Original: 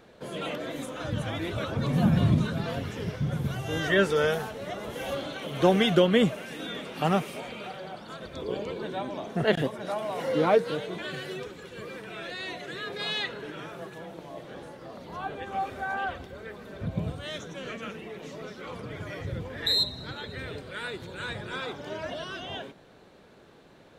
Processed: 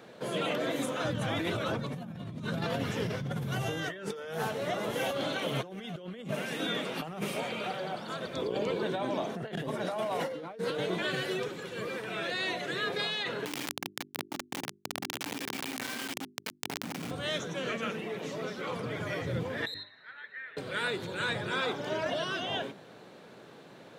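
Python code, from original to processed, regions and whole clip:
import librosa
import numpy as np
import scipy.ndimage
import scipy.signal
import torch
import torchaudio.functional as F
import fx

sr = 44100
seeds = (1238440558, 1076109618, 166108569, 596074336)

y = fx.chain(x, sr, fx.vowel_filter(vowel='i'),
    fx.quant_dither(seeds[0], bits=8, dither='none'),
    fx.env_flatten(amount_pct=100), at=(13.45, 17.11))
y = fx.chain(y, sr, fx.bandpass_q(hz=1800.0, q=5.3),
    fx.air_absorb(metres=110.0), at=(19.74, 20.57))
y = scipy.signal.sosfilt(scipy.signal.butter(4, 110.0, 'highpass', fs=sr, output='sos'), y)
y = fx.hum_notches(y, sr, base_hz=50, count=8)
y = fx.over_compress(y, sr, threshold_db=-34.0, ratio=-1.0)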